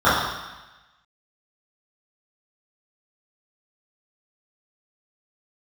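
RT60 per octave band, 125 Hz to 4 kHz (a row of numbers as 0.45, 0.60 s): 1.1, 1.0, 1.0, 1.1, 1.2, 1.2 s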